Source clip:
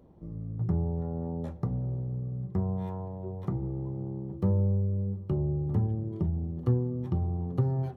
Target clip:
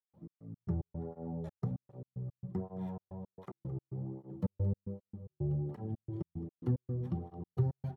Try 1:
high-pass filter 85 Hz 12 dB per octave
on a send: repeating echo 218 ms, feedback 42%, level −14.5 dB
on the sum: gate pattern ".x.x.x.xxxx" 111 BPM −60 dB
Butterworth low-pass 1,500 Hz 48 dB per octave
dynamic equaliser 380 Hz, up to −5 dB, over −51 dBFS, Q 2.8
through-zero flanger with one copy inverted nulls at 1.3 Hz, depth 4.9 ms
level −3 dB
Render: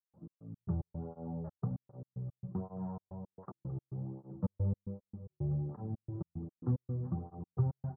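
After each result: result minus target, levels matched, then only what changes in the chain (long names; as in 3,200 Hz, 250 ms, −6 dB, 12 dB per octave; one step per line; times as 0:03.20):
2,000 Hz band −6.5 dB; 500 Hz band −2.5 dB
remove: Butterworth low-pass 1,500 Hz 48 dB per octave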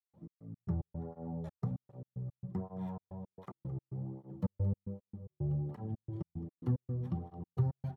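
500 Hz band −2.5 dB
change: dynamic equaliser 1,100 Hz, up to −5 dB, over −51 dBFS, Q 2.8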